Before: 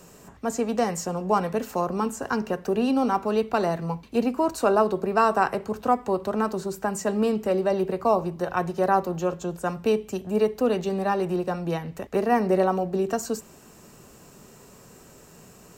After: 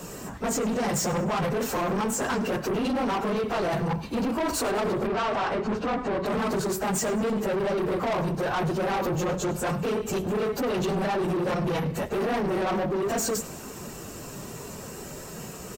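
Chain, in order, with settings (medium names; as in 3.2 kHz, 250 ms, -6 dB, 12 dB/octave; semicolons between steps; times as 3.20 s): phase randomisation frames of 50 ms; in parallel at +1 dB: compressor with a negative ratio -28 dBFS, ratio -0.5; on the sum: saturation -25.5 dBFS, distortion -7 dB; 5.07–6.26 s: distance through air 93 m; feedback delay 100 ms, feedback 51%, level -19 dB; trim +1.5 dB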